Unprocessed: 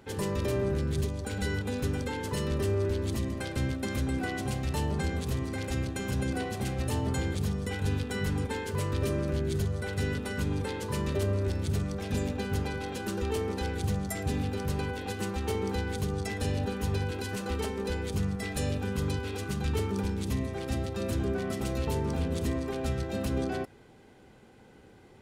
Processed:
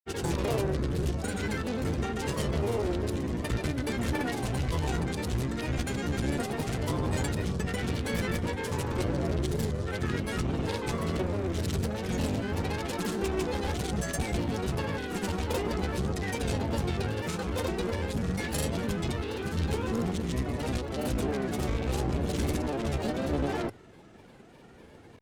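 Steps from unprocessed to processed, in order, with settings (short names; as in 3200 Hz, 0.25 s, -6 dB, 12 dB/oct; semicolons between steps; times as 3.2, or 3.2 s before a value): notches 50/100 Hz; grains, pitch spread up and down by 3 st; one-sided clip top -35.5 dBFS; gain +4.5 dB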